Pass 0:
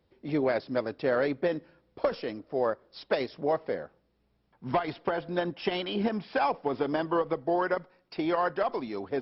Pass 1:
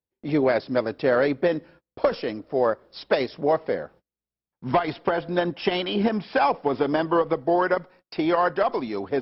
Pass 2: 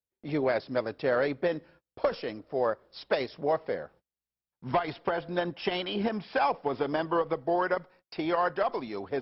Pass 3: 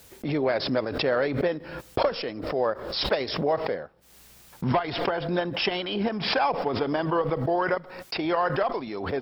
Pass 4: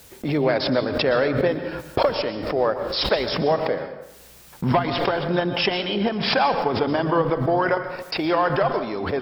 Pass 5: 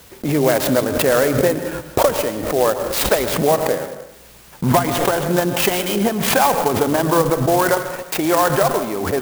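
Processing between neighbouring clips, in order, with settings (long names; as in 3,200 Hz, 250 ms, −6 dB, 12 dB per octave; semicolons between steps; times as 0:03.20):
noise gate −55 dBFS, range −30 dB; level +6 dB
parametric band 270 Hz −3.5 dB 1.2 octaves; level −5 dB
background raised ahead of every attack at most 54 dB per second; level +2 dB
dense smooth reverb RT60 0.9 s, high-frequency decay 0.7×, pre-delay 105 ms, DRR 9.5 dB; level +4 dB
converter with an unsteady clock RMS 0.055 ms; level +4.5 dB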